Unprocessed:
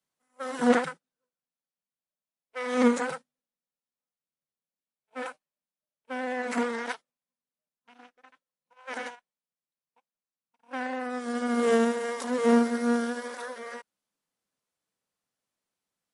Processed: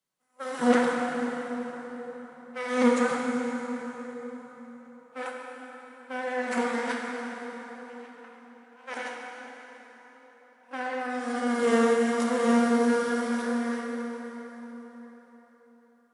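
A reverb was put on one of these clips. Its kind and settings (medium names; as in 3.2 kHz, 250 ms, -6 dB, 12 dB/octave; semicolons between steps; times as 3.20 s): plate-style reverb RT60 4.6 s, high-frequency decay 0.7×, DRR -1 dB; trim -1 dB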